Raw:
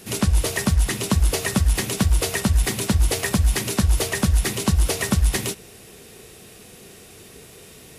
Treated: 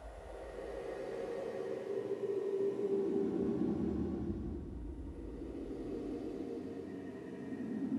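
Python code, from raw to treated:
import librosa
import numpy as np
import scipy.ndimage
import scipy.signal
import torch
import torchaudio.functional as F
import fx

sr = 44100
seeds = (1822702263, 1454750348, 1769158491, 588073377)

y = fx.filter_sweep_bandpass(x, sr, from_hz=2000.0, to_hz=270.0, start_s=1.08, end_s=2.12, q=7.6)
y = fx.echo_thinned(y, sr, ms=429, feedback_pct=28, hz=420.0, wet_db=-20)
y = fx.paulstretch(y, sr, seeds[0], factor=11.0, window_s=0.25, from_s=1.68)
y = y * 10.0 ** (1.0 / 20.0)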